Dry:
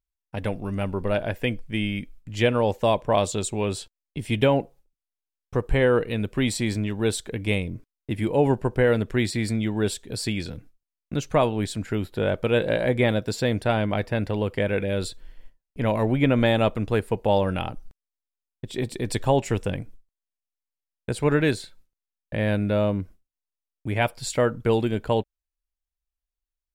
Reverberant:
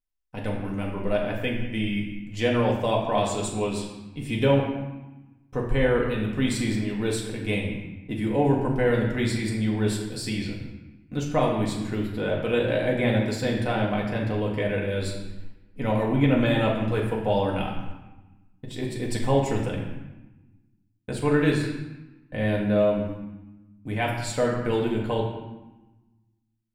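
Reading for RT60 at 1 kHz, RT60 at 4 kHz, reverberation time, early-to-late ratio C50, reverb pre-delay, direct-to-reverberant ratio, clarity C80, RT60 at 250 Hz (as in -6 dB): 1.1 s, 0.80 s, 1.0 s, 3.5 dB, 4 ms, -3.0 dB, 5.5 dB, 1.5 s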